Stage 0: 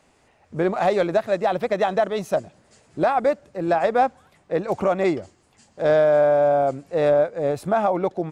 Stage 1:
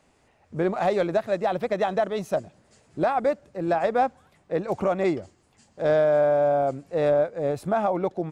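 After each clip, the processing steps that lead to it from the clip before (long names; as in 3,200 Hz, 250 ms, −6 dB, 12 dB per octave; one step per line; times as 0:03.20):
low-shelf EQ 330 Hz +3 dB
level −4 dB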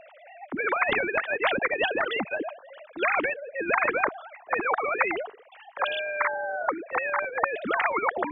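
three sine waves on the formant tracks
every bin compressed towards the loudest bin 10 to 1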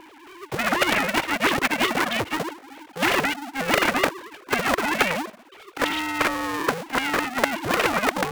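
sub-harmonics by changed cycles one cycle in 2, inverted
level +3.5 dB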